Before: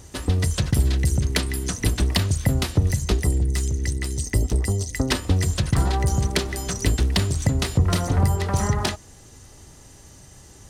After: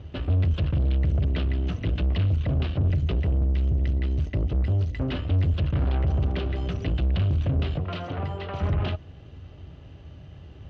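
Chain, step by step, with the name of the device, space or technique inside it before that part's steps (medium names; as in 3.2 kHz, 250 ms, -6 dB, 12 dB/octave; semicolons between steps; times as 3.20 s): 7.78–8.61 s: high-pass 680 Hz 6 dB/octave; guitar amplifier (valve stage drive 28 dB, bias 0.55; tone controls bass +13 dB, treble -8 dB; cabinet simulation 75–3700 Hz, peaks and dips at 120 Hz -6 dB, 210 Hz -8 dB, 620 Hz +5 dB, 910 Hz -5 dB, 1.9 kHz -5 dB, 2.9 kHz +7 dB)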